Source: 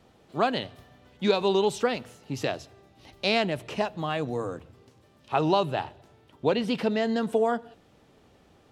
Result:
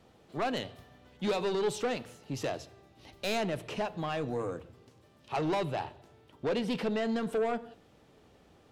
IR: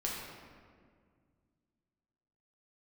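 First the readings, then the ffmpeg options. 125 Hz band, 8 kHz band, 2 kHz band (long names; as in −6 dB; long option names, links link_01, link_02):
−4.5 dB, −1.5 dB, −6.0 dB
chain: -filter_complex "[0:a]asoftclip=type=tanh:threshold=-24dB,asplit=2[link_01][link_02];[link_02]equalizer=frequency=450:width=1.5:gain=7.5[link_03];[1:a]atrim=start_sample=2205,atrim=end_sample=6174[link_04];[link_03][link_04]afir=irnorm=-1:irlink=0,volume=-19dB[link_05];[link_01][link_05]amix=inputs=2:normalize=0,volume=-3dB"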